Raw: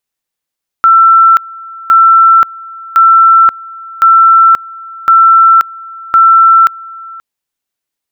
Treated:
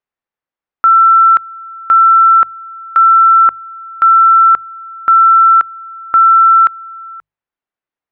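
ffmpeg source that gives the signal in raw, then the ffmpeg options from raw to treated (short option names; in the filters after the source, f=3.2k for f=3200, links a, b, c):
-f lavfi -i "aevalsrc='pow(10,(-1.5-23*gte(mod(t,1.06),0.53))/20)*sin(2*PI*1340*t)':d=6.36:s=44100"
-af "lowpass=1.7k,lowshelf=f=480:g=-5,bandreject=f=50:t=h:w=6,bandreject=f=100:t=h:w=6,bandreject=f=150:t=h:w=6"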